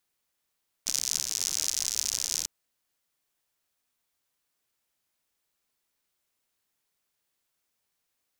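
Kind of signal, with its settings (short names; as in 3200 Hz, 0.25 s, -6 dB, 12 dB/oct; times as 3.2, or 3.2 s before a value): rain from filtered ticks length 1.60 s, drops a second 97, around 6000 Hz, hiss -22.5 dB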